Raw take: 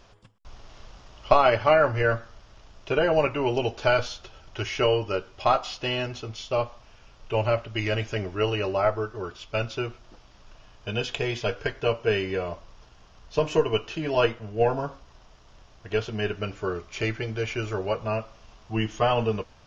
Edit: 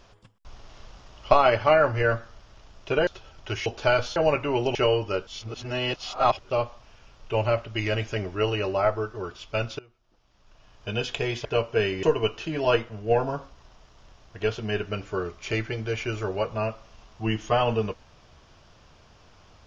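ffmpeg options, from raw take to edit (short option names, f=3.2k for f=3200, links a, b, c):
-filter_complex "[0:a]asplit=10[a][b][c][d][e][f][g][h][i][j];[a]atrim=end=3.072[k];[b]atrim=start=4.158:end=4.752[l];[c]atrim=start=3.658:end=4.162[m];[d]atrim=start=3.068:end=3.662[n];[e]atrim=start=4.748:end=5.272[o];[f]atrim=start=5.268:end=6.502,asetpts=PTS-STARTPTS,areverse[p];[g]atrim=start=6.498:end=9.79,asetpts=PTS-STARTPTS,afade=t=out:st=3.288:d=0.004:c=hsin:silence=0.0668344[q];[h]atrim=start=9.79:end=11.452,asetpts=PTS-STARTPTS,afade=t=in:d=1.09:c=qua:silence=0.0668344[r];[i]atrim=start=11.758:end=12.342[s];[j]atrim=start=13.528[t];[k][l]acrossfade=d=0.004:c1=hsin:c2=hsin[u];[u][m]acrossfade=d=0.004:c1=hsin:c2=hsin[v];[v][n]acrossfade=d=0.004:c1=hsin:c2=hsin[w];[w][o]acrossfade=d=0.004:c1=hsin:c2=hsin[x];[x][p]acrossfade=d=0.004:c1=hsin:c2=hsin[y];[q][r]concat=n=2:v=0:a=1[z];[y][z]acrossfade=d=0.004:c1=hsin:c2=hsin[aa];[aa][s]acrossfade=d=0.004:c1=hsin:c2=hsin[ab];[ab][t]acrossfade=d=0.004:c1=hsin:c2=hsin"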